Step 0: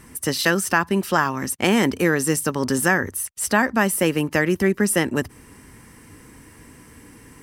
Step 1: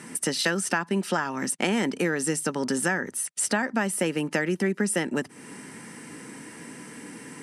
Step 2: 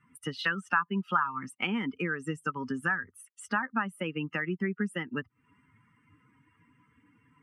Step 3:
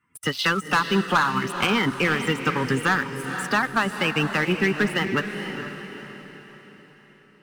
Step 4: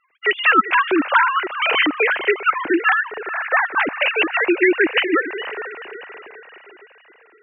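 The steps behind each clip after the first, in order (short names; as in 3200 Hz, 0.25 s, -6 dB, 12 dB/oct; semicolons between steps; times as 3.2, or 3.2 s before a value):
compressor 3:1, threshold -31 dBFS, peak gain reduction 14 dB; Chebyshev band-pass 170–9600 Hz, order 3; notch 1100 Hz, Q 7.8; gain +6 dB
per-bin expansion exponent 2; EQ curve 110 Hz 0 dB, 670 Hz -12 dB, 1200 Hz +9 dB, 1900 Hz -3 dB, 2800 Hz -1 dB, 5500 Hz -23 dB; in parallel at -2 dB: compressor, threshold -38 dBFS, peak gain reduction 15.5 dB
spectral limiter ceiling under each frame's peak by 13 dB; sample leveller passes 3; diffused feedback echo 0.472 s, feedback 46%, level -8 dB
sine-wave speech; gain +5 dB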